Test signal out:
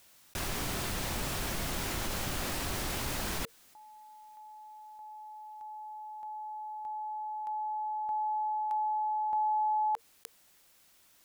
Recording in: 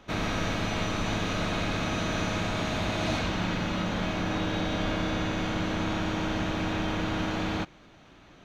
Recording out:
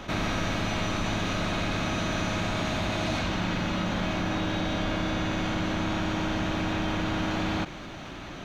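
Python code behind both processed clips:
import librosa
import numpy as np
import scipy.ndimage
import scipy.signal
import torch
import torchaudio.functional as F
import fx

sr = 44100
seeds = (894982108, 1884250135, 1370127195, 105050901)

y = fx.rider(x, sr, range_db=3, speed_s=0.5)
y = fx.notch(y, sr, hz=460.0, q=12.0)
y = fx.env_flatten(y, sr, amount_pct=50)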